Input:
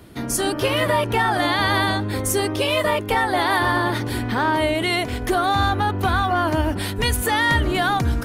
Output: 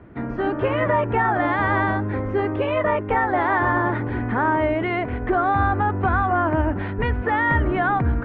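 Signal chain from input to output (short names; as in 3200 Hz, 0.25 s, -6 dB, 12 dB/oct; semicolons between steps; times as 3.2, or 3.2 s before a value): inverse Chebyshev low-pass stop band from 8100 Hz, stop band 70 dB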